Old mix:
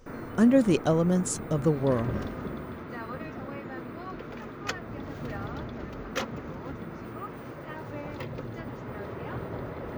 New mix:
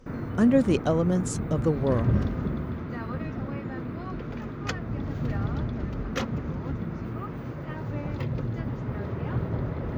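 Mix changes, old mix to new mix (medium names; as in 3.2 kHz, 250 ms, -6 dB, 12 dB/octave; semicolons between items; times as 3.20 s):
background: add tone controls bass +11 dB, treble +2 dB; master: add treble shelf 9.7 kHz -11 dB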